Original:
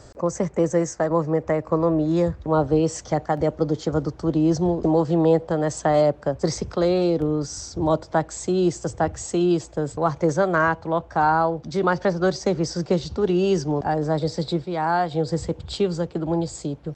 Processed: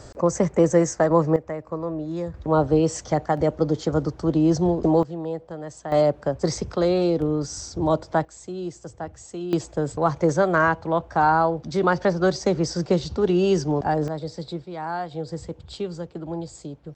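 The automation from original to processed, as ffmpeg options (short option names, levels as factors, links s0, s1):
-af "asetnsamples=n=441:p=0,asendcmd='1.36 volume volume -8.5dB;2.34 volume volume 0.5dB;5.03 volume volume -12dB;5.92 volume volume -0.5dB;8.25 volume volume -11dB;9.53 volume volume 0.5dB;14.08 volume volume -7.5dB',volume=1.41"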